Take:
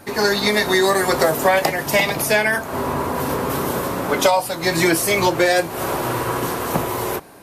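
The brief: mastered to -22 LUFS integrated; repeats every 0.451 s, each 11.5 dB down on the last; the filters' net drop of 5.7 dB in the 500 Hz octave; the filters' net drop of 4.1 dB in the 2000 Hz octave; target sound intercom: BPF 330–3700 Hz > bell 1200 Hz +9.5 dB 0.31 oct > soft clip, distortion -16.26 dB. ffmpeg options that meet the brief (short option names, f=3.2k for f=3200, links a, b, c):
-af "highpass=330,lowpass=3.7k,equalizer=f=500:t=o:g=-6,equalizer=f=1.2k:t=o:w=0.31:g=9.5,equalizer=f=2k:t=o:g=-5.5,aecho=1:1:451|902|1353:0.266|0.0718|0.0194,asoftclip=threshold=-13.5dB,volume=1.5dB"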